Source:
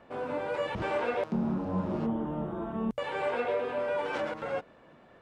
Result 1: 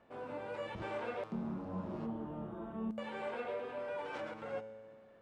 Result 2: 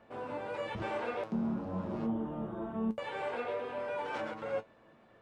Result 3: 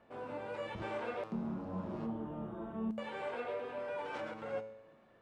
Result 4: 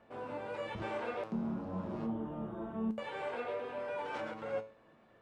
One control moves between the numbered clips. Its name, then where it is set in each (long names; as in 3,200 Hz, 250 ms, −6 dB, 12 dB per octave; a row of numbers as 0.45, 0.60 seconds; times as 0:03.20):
tuned comb filter, decay: 1.8, 0.15, 0.85, 0.38 seconds